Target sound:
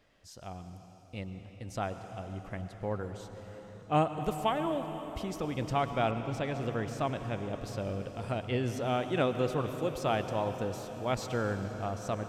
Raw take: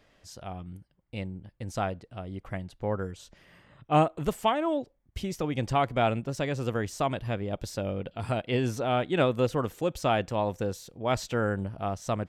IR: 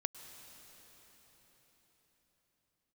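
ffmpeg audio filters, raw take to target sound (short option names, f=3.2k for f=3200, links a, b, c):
-filter_complex "[1:a]atrim=start_sample=2205[a];[0:a][a]afir=irnorm=-1:irlink=0,asettb=1/sr,asplit=3[b][c][d];[b]atrim=end=6.114[e];[c]atrim=start=6.11:end=8.68,asetpts=PTS-STARTPTS,afade=t=in:d=0.004:c=qsin,afade=t=out:st=2.566:d=0.004:c=qsin,adynamicequalizer=threshold=0.00282:dfrequency=4500:dqfactor=0.7:tfrequency=4500:tqfactor=0.7:attack=5:release=100:ratio=0.375:range=2.5:mode=cutabove:tftype=highshelf[f];[d]atrim=start=8.676[g];[e][f]acrossfade=d=0.004:c1=hsin:c2=qsin[h];[h][g]acrossfade=d=0.004:c1=qsin:c2=hsin,volume=-3.5dB"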